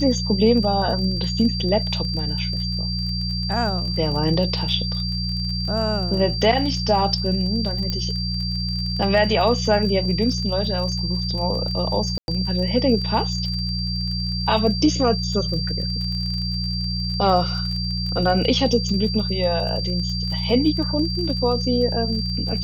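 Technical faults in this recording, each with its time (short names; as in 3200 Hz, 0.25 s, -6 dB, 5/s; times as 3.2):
crackle 33/s -29 dBFS
hum 60 Hz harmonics 3 -26 dBFS
tone 4700 Hz -27 dBFS
7.9 pop -12 dBFS
12.18–12.28 gap 0.101 s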